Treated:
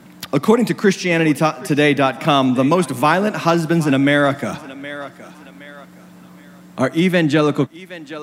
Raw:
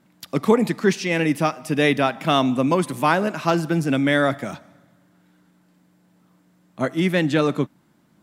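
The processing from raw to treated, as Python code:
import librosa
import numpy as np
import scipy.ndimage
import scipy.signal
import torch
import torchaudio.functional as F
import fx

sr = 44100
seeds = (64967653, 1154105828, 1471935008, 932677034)

y = fx.echo_thinned(x, sr, ms=768, feedback_pct=24, hz=400.0, wet_db=-19.5)
y = fx.band_squash(y, sr, depth_pct=40)
y = y * 10.0 ** (4.5 / 20.0)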